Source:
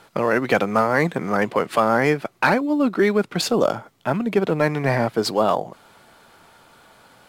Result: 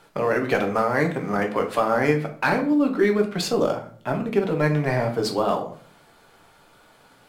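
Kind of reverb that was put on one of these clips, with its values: shoebox room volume 43 m³, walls mixed, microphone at 0.45 m; gain -5 dB

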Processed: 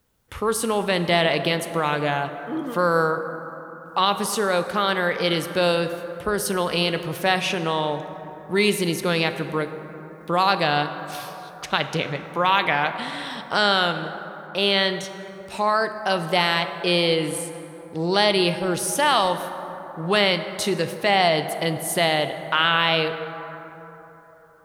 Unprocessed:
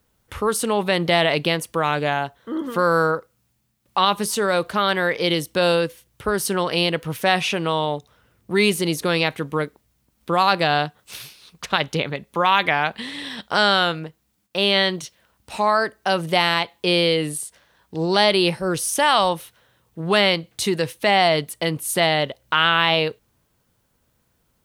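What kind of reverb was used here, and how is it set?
plate-style reverb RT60 3.9 s, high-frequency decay 0.35×, DRR 8.5 dB; gain -2 dB

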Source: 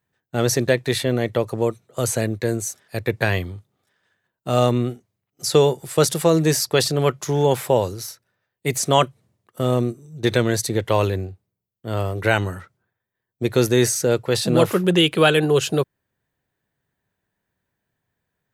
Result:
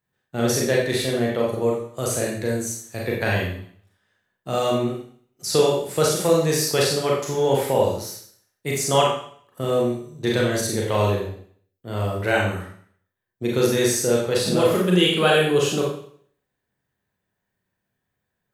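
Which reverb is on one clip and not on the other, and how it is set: Schroeder reverb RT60 0.56 s, combs from 30 ms, DRR -3 dB; gain -5.5 dB

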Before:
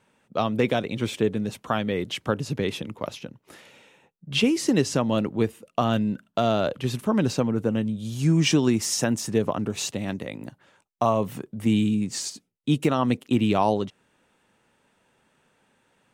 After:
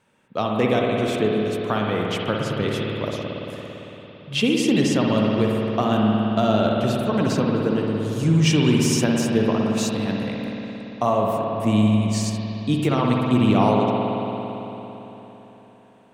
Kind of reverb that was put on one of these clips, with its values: spring tank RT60 3.8 s, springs 56 ms, chirp 25 ms, DRR -1.5 dB

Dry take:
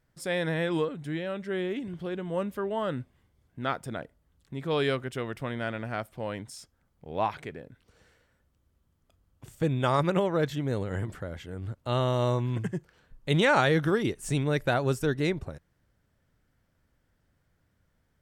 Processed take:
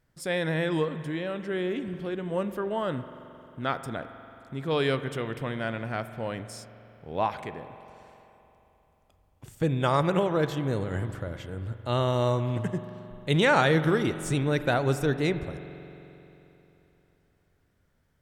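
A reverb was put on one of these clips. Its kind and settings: spring tank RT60 3.3 s, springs 44 ms, chirp 60 ms, DRR 11 dB; gain +1 dB

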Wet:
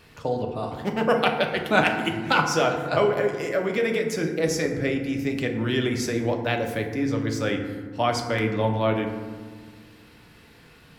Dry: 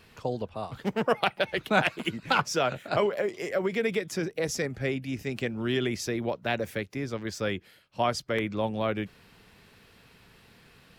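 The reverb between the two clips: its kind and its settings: FDN reverb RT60 1.5 s, low-frequency decay 1.6×, high-frequency decay 0.4×, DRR 2.5 dB; gain +2.5 dB

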